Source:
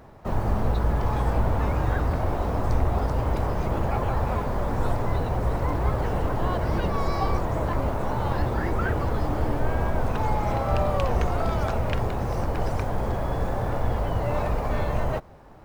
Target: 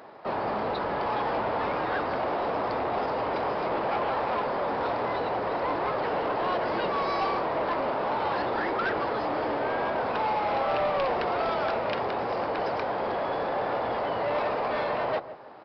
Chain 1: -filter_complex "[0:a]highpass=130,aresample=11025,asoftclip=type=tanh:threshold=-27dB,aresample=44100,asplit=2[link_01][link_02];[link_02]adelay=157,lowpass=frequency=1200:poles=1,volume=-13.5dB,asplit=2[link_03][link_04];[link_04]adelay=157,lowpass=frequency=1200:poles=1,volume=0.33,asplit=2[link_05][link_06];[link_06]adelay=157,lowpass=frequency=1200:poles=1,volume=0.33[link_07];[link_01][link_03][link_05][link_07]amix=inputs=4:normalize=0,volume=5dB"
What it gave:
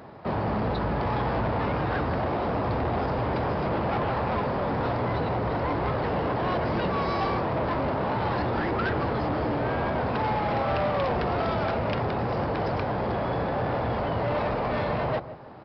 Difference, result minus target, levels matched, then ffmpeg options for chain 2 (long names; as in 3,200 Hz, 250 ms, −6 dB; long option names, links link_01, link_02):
125 Hz band +13.5 dB
-filter_complex "[0:a]highpass=390,aresample=11025,asoftclip=type=tanh:threshold=-27dB,aresample=44100,asplit=2[link_01][link_02];[link_02]adelay=157,lowpass=frequency=1200:poles=1,volume=-13.5dB,asplit=2[link_03][link_04];[link_04]adelay=157,lowpass=frequency=1200:poles=1,volume=0.33,asplit=2[link_05][link_06];[link_06]adelay=157,lowpass=frequency=1200:poles=1,volume=0.33[link_07];[link_01][link_03][link_05][link_07]amix=inputs=4:normalize=0,volume=5dB"